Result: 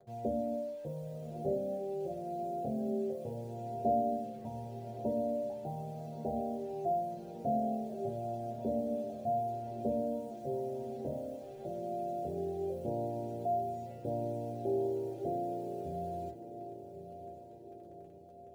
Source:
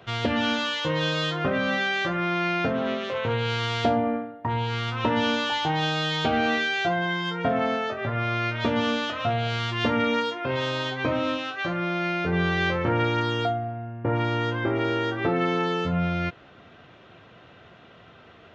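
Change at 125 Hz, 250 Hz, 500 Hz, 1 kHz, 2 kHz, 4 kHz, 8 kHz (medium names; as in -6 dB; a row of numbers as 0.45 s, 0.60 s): -15.0 dB, -11.0 dB, -7.0 dB, -10.5 dB, under -40 dB, under -35 dB, no reading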